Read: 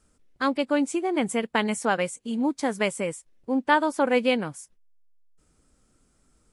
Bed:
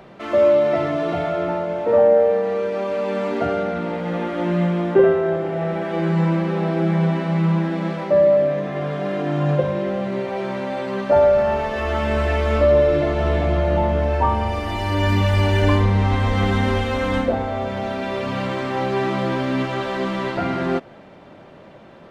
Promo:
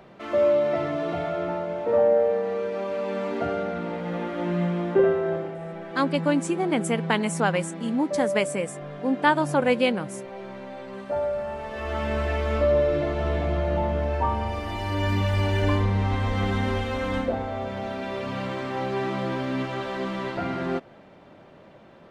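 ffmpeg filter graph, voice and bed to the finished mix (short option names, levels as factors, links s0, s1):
-filter_complex "[0:a]adelay=5550,volume=1.06[s0];[1:a]volume=1.12,afade=t=out:st=5.36:d=0.22:silence=0.446684,afade=t=in:st=11.57:d=0.44:silence=0.473151[s1];[s0][s1]amix=inputs=2:normalize=0"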